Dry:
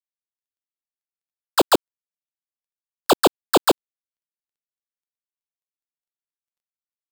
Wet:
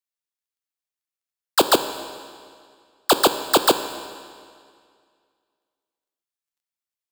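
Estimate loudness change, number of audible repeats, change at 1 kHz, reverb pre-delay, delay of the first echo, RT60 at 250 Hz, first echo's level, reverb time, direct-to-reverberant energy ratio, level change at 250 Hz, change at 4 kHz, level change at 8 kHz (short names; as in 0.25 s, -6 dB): 0.0 dB, none, +0.5 dB, 15 ms, none, 2.1 s, none, 2.1 s, 9.0 dB, -2.0 dB, +3.0 dB, +3.5 dB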